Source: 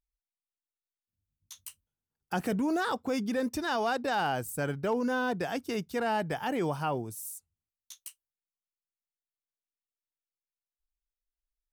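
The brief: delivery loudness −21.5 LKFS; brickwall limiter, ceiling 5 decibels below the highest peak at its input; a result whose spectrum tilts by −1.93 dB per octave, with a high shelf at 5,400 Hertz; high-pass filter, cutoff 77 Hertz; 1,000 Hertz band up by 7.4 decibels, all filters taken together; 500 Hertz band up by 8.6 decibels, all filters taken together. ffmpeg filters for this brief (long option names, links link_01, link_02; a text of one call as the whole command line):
ffmpeg -i in.wav -af "highpass=77,equalizer=frequency=500:width_type=o:gain=8.5,equalizer=frequency=1000:width_type=o:gain=6.5,highshelf=frequency=5400:gain=-8,volume=5.5dB,alimiter=limit=-12dB:level=0:latency=1" out.wav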